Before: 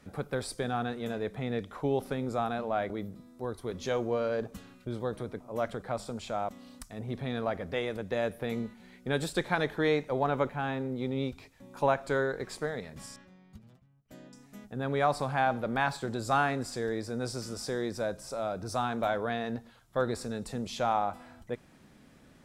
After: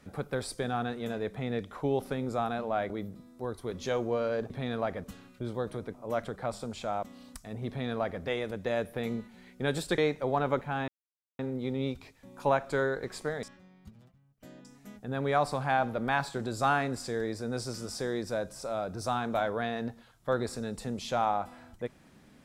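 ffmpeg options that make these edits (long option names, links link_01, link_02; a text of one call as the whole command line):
ffmpeg -i in.wav -filter_complex "[0:a]asplit=6[link_01][link_02][link_03][link_04][link_05][link_06];[link_01]atrim=end=4.502[link_07];[link_02]atrim=start=7.138:end=7.682[link_08];[link_03]atrim=start=4.498:end=9.442[link_09];[link_04]atrim=start=9.858:end=10.76,asetpts=PTS-STARTPTS,afade=type=out:start_time=0.898:duration=0.004:curve=hsin,apad=pad_dur=0.51[link_10];[link_05]atrim=start=10.76:end=12.802,asetpts=PTS-STARTPTS,afade=type=in:duration=0.004:curve=hsin[link_11];[link_06]atrim=start=13.108[link_12];[link_07][link_08]acrossfade=duration=0.004:curve1=hsin:curve2=hsin[link_13];[link_13][link_09]acrossfade=duration=0.004:curve1=hsin:curve2=hsin[link_14];[link_10][link_11]concat=n=2:v=0:a=1[link_15];[link_14][link_15]acrossfade=duration=0.004:curve1=hsin:curve2=hsin[link_16];[link_16][link_12]acrossfade=duration=0.004:curve1=hsin:curve2=hsin" out.wav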